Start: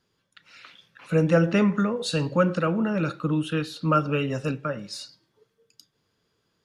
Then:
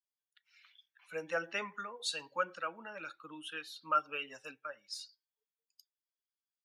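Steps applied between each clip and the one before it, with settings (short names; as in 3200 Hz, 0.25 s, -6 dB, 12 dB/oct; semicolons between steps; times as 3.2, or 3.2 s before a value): per-bin expansion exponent 1.5; HPF 900 Hz 12 dB/oct; gain -4.5 dB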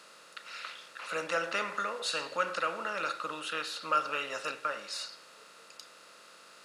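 per-bin compression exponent 0.4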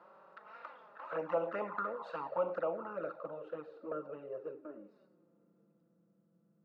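low-pass sweep 900 Hz -> 190 Hz, 2.18–6.16; envelope flanger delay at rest 6.2 ms, full sweep at -28 dBFS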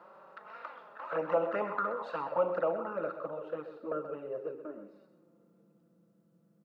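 echo 0.128 s -11 dB; gain +4.5 dB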